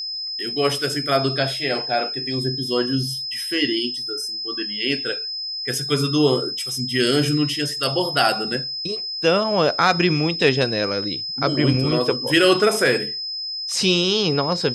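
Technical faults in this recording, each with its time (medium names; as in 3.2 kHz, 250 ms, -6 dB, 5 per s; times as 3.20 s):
whine 5.1 kHz -26 dBFS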